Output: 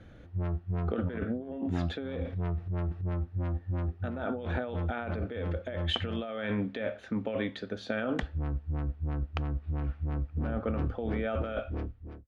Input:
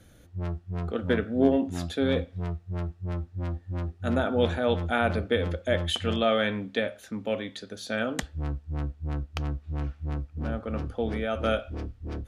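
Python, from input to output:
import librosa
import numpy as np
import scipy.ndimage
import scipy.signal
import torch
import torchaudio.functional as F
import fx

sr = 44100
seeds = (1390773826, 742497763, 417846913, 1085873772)

y = fx.fade_out_tail(x, sr, length_s=0.76)
y = scipy.signal.sosfilt(scipy.signal.butter(2, 2500.0, 'lowpass', fs=sr, output='sos'), y)
y = fx.over_compress(y, sr, threshold_db=-32.0, ratio=-1.0)
y = fx.transient(y, sr, attack_db=-3, sustain_db=9, at=(2.14, 3.06))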